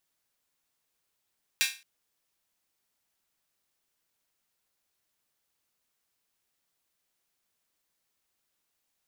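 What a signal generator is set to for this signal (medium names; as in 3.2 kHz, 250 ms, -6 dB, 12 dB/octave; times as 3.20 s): open hi-hat length 0.22 s, high-pass 2.2 kHz, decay 0.32 s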